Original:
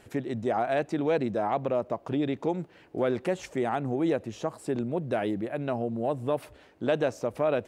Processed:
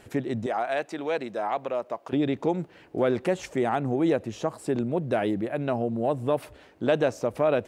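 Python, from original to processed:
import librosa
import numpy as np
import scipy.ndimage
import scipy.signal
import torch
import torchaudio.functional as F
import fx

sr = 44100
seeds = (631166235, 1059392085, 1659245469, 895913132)

y = fx.highpass(x, sr, hz=780.0, slope=6, at=(0.46, 2.13))
y = y * librosa.db_to_amplitude(3.0)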